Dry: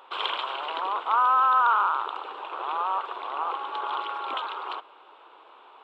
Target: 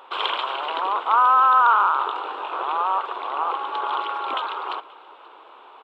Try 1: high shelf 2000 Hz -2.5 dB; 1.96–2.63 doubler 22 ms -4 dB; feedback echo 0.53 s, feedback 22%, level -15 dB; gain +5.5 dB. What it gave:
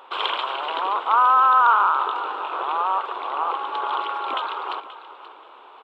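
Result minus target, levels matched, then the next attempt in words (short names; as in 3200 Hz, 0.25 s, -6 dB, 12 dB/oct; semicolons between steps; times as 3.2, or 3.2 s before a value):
echo-to-direct +9 dB
high shelf 2000 Hz -2.5 dB; 1.96–2.63 doubler 22 ms -4 dB; feedback echo 0.53 s, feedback 22%, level -24 dB; gain +5.5 dB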